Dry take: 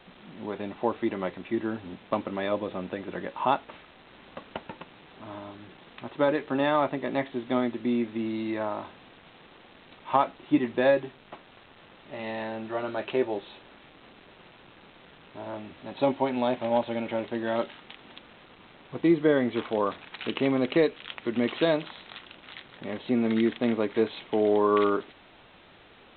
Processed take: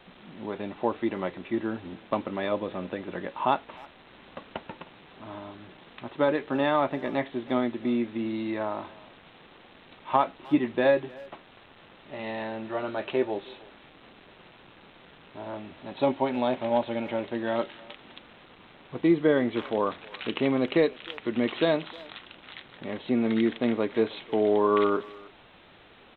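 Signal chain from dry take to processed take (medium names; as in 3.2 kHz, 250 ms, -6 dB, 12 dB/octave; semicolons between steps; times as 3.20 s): speakerphone echo 310 ms, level -21 dB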